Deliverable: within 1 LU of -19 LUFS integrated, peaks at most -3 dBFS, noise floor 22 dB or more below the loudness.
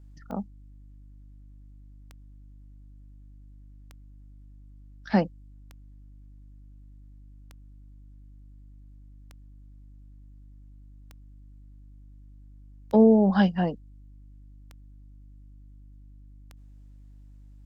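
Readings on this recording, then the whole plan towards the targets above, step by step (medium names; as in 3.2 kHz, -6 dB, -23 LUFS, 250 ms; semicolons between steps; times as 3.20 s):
clicks found 10; hum 50 Hz; highest harmonic 300 Hz; hum level -46 dBFS; loudness -23.5 LUFS; peak level -8.5 dBFS; loudness target -19.0 LUFS
-> de-click; de-hum 50 Hz, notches 6; trim +4.5 dB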